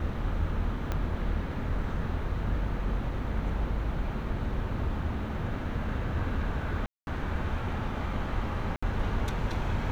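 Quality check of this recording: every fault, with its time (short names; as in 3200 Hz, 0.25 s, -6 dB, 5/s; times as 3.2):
0.92 pop -18 dBFS
6.86–7.07 gap 0.211 s
8.76–8.82 gap 65 ms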